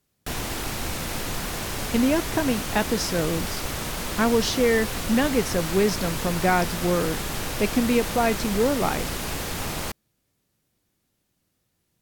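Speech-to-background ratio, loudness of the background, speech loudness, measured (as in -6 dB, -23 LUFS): 5.0 dB, -29.5 LUFS, -24.5 LUFS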